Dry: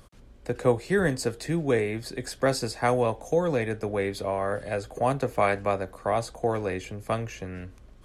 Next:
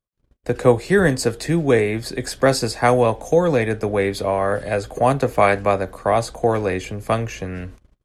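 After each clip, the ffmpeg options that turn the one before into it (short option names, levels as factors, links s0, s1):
-af "agate=range=0.00631:threshold=0.00501:ratio=16:detection=peak,volume=2.51"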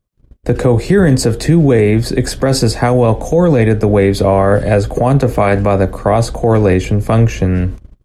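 -af "lowshelf=f=430:g=11.5,alimiter=level_in=2.37:limit=0.891:release=50:level=0:latency=1,volume=0.891"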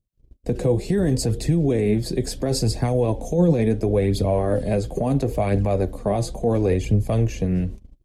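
-af "equalizer=f=1400:w=1.1:g=-12.5,flanger=delay=0.2:depth=6:regen=45:speed=0.72:shape=triangular,volume=0.631"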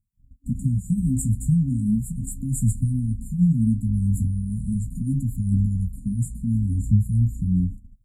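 -af "afftfilt=real='re*(1-between(b*sr/4096,270,6900))':imag='im*(1-between(b*sr/4096,270,6900))':win_size=4096:overlap=0.75,flanger=delay=9.4:depth=9.6:regen=-43:speed=0.37:shape=sinusoidal,afftfilt=real='re*(1-between(b*sr/1024,330*pow(1600/330,0.5+0.5*sin(2*PI*0.8*pts/sr))/1.41,330*pow(1600/330,0.5+0.5*sin(2*PI*0.8*pts/sr))*1.41))':imag='im*(1-between(b*sr/1024,330*pow(1600/330,0.5+0.5*sin(2*PI*0.8*pts/sr))/1.41,330*pow(1600/330,0.5+0.5*sin(2*PI*0.8*pts/sr))*1.41))':win_size=1024:overlap=0.75,volume=1.68"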